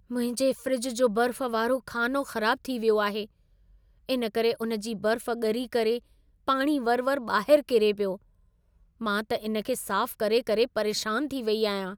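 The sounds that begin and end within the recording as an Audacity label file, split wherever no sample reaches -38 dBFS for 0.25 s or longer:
4.090000	5.990000	sound
6.480000	8.160000	sound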